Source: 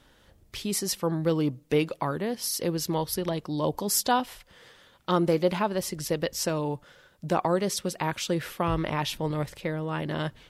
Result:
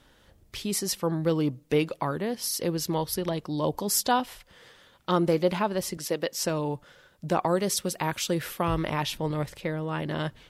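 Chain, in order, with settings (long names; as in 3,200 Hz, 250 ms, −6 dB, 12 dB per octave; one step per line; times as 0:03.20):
0:05.97–0:06.44: high-pass filter 230 Hz 12 dB per octave
0:07.47–0:09.03: high-shelf EQ 8,200 Hz +8 dB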